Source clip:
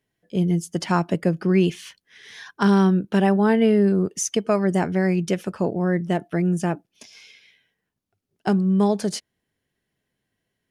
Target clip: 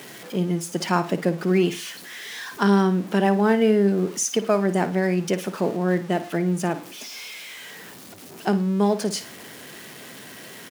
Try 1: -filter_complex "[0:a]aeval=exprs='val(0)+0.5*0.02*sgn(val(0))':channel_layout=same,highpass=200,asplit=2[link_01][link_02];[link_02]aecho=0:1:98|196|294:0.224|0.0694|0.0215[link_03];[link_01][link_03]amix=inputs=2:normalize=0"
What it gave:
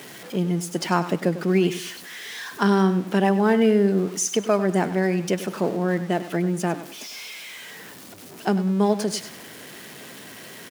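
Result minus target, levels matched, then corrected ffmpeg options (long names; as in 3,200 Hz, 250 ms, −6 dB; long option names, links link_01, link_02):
echo 43 ms late
-filter_complex "[0:a]aeval=exprs='val(0)+0.5*0.02*sgn(val(0))':channel_layout=same,highpass=200,asplit=2[link_01][link_02];[link_02]aecho=0:1:55|110|165:0.224|0.0694|0.0215[link_03];[link_01][link_03]amix=inputs=2:normalize=0"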